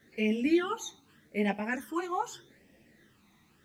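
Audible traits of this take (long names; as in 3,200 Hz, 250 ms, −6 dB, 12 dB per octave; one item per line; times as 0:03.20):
phaser sweep stages 12, 0.82 Hz, lowest notch 520–1,300 Hz
a quantiser's noise floor 12 bits, dither none
a shimmering, thickened sound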